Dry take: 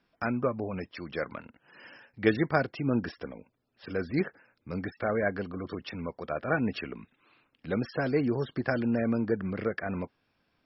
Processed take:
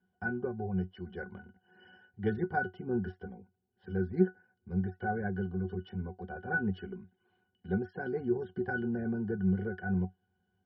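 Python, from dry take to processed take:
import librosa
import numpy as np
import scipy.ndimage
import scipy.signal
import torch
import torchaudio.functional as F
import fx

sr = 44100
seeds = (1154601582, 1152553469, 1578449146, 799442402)

y = fx.octave_resonator(x, sr, note='F#', decay_s=0.13)
y = y * librosa.db_to_amplitude(7.0)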